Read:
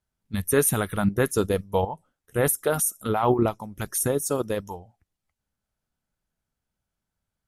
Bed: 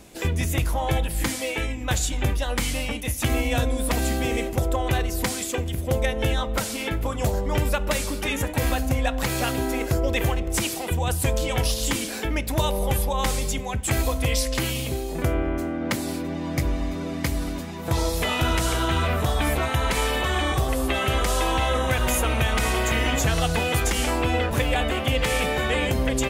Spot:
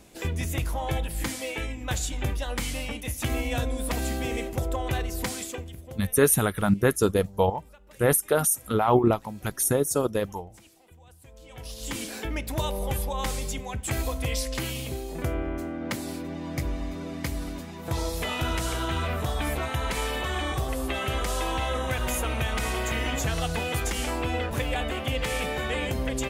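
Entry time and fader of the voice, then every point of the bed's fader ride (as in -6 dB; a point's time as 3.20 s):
5.65 s, +1.0 dB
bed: 5.41 s -5 dB
6.34 s -29 dB
11.27 s -29 dB
12.01 s -5.5 dB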